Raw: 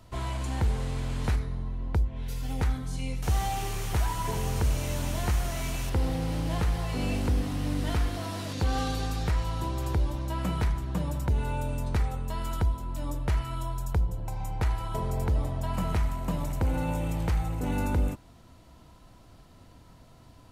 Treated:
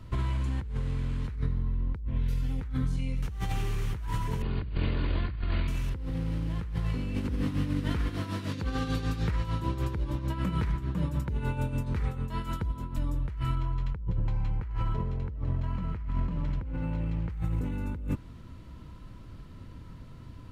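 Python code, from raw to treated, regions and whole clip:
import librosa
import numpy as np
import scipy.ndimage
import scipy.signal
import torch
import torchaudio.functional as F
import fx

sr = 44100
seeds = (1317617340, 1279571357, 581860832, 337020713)

y = fx.chain(x, sr, fx.lower_of_two(delay_ms=2.8),
    fx.brickwall_lowpass(high_hz=4800.0), at=(4.42, 5.68))
y = fx.chain(y, sr, fx.highpass(hz=120.0, slope=6),
    fx.tremolo(hz=6.7, depth=0.65), at=(7.15, 12.98))
y = fx.chain(y, sr, fx.notch(hz=3600.0, q=6.0),
    fx.resample_linear(factor=4), at=(13.55, 17.3))
y = fx.peak_eq(y, sr, hz=720.0, db=-13.0, octaves=0.46)
y = fx.over_compress(y, sr, threshold_db=-34.0, ratio=-1.0)
y = fx.bass_treble(y, sr, bass_db=5, treble_db=-10)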